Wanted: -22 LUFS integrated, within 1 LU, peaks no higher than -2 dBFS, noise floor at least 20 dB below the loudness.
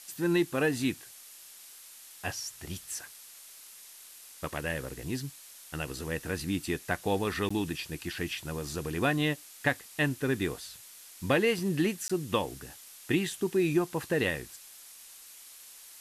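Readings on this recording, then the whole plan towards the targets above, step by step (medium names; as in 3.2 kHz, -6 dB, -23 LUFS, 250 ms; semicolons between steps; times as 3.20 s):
dropouts 2; longest dropout 15 ms; noise floor -51 dBFS; noise floor target -52 dBFS; loudness -31.5 LUFS; peak level -12.5 dBFS; loudness target -22.0 LUFS
-> interpolate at 7.49/12.08 s, 15 ms; noise print and reduce 6 dB; trim +9.5 dB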